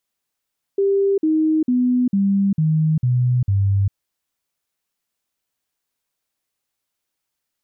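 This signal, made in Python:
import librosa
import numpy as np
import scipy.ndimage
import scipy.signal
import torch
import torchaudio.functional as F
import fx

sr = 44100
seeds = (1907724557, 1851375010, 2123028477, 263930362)

y = fx.stepped_sweep(sr, from_hz=395.0, direction='down', per_octave=3, tones=7, dwell_s=0.4, gap_s=0.05, level_db=-14.0)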